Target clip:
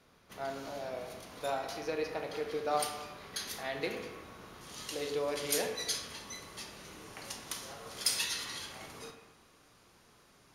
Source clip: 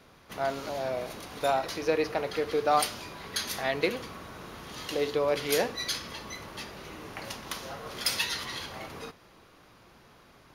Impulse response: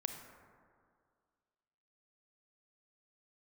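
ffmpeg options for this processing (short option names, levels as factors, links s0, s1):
-filter_complex "[0:a]asetnsamples=n=441:p=0,asendcmd='4.61 equalizer g 12.5',equalizer=f=8300:w=0.72:g=4[s0];[1:a]atrim=start_sample=2205,asetrate=74970,aresample=44100[s1];[s0][s1]afir=irnorm=-1:irlink=0,volume=0.708"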